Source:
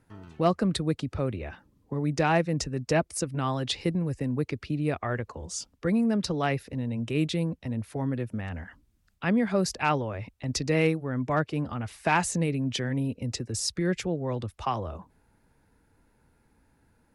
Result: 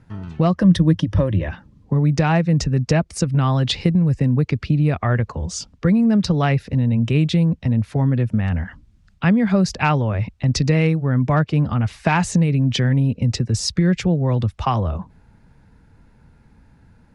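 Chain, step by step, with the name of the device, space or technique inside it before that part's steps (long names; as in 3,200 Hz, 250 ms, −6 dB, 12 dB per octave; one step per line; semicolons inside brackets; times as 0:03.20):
jukebox (low-pass filter 6,200 Hz 12 dB per octave; low shelf with overshoot 240 Hz +6 dB, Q 1.5; downward compressor 5 to 1, threshold −22 dBFS, peak gain reduction 7 dB)
0:00.57–0:01.48: EQ curve with evenly spaced ripples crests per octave 1.2, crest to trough 12 dB
level +9 dB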